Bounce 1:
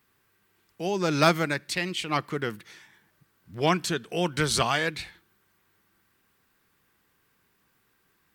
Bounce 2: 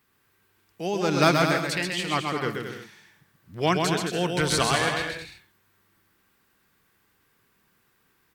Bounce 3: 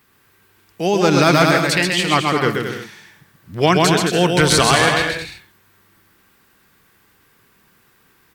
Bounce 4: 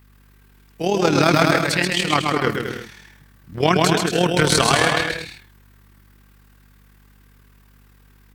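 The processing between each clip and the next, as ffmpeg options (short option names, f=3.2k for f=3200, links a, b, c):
-af "aecho=1:1:130|221|284.7|329.3|360.5:0.631|0.398|0.251|0.158|0.1"
-af "alimiter=level_in=11.5dB:limit=-1dB:release=50:level=0:latency=1,volume=-1dB"
-af "tremolo=f=38:d=0.621,aeval=exprs='val(0)+0.00282*(sin(2*PI*50*n/s)+sin(2*PI*2*50*n/s)/2+sin(2*PI*3*50*n/s)/3+sin(2*PI*4*50*n/s)/4+sin(2*PI*5*50*n/s)/5)':c=same"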